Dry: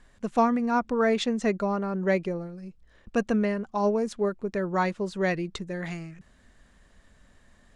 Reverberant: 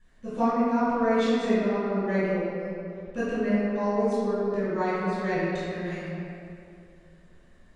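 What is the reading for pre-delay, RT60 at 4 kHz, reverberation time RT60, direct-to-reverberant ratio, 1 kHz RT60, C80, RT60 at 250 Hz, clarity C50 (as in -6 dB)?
5 ms, 1.5 s, 2.5 s, -14.0 dB, 2.3 s, -2.5 dB, 2.5 s, -5.0 dB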